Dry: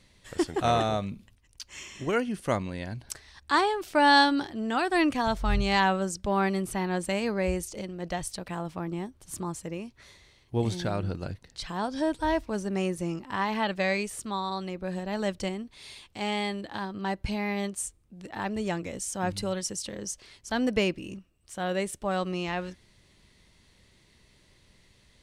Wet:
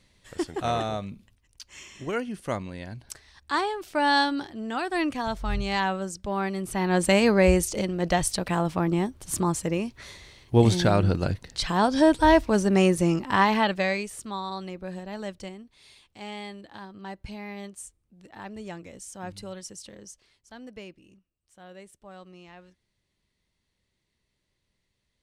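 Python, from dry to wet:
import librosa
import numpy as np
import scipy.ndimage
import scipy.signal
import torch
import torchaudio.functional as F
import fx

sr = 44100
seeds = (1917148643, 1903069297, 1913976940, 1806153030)

y = fx.gain(x, sr, db=fx.line((6.56, -2.5), (7.05, 9.0), (13.39, 9.0), (14.04, -1.5), (14.72, -1.5), (15.57, -8.0), (19.93, -8.0), (20.6, -17.0)))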